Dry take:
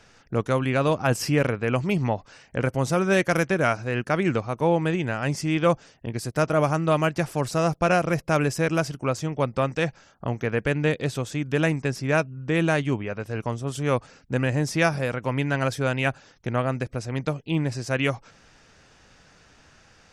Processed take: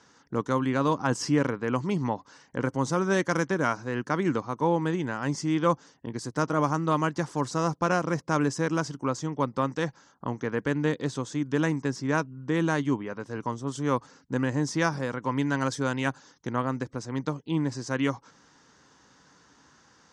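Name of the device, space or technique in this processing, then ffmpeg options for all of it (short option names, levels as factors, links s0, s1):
car door speaker: -filter_complex "[0:a]asettb=1/sr,asplit=3[s0][s1][s2];[s0]atrim=end=15.304[s3];[s1]atrim=start=15.3:end=16.51,asetpts=PTS-STARTPTS,afade=t=in:d=0.004:c=qsin,afade=t=out:st=1.206:d=0.004:c=qsin,highshelf=f=4600:g=5.5[s4];[s2]atrim=start=16.506[s5];[s3][s4]acrossfade=d=0.004:c1=hsin:c2=qsin[s6];[s6][s5]acrossfade=d=0.004:c1=qsin:c2=hsin,highpass=100,equalizer=f=100:t=q:w=4:g=-7,equalizer=f=280:t=q:w=4:g=6,equalizer=f=650:t=q:w=4:g=-7,equalizer=f=1000:t=q:w=4:g=8,equalizer=f=2500:t=q:w=4:g=-10,equalizer=f=6400:t=q:w=4:g=4,lowpass=f=8300:w=0.5412,lowpass=f=8300:w=1.3066,volume=0.668"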